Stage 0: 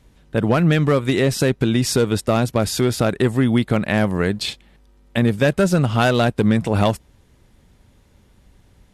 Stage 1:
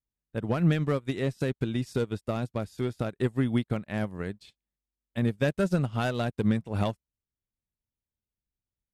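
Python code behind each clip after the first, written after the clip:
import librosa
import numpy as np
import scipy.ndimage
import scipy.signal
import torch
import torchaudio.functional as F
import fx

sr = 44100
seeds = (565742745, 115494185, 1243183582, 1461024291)

y = fx.low_shelf(x, sr, hz=230.0, db=4.0)
y = fx.upward_expand(y, sr, threshold_db=-35.0, expansion=2.5)
y = y * 10.0 ** (-8.0 / 20.0)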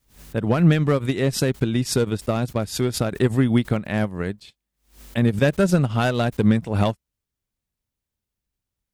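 y = fx.pre_swell(x, sr, db_per_s=140.0)
y = y * 10.0 ** (7.5 / 20.0)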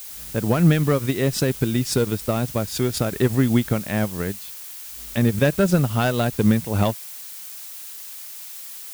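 y = fx.dmg_noise_colour(x, sr, seeds[0], colour='blue', level_db=-37.0)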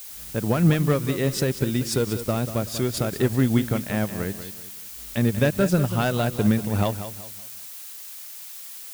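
y = fx.echo_feedback(x, sr, ms=189, feedback_pct=34, wet_db=-11.5)
y = y * 10.0 ** (-2.5 / 20.0)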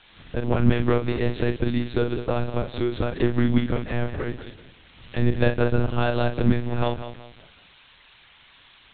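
y = fx.doubler(x, sr, ms=43.0, db=-7.0)
y = fx.lpc_monotone(y, sr, seeds[1], pitch_hz=120.0, order=10)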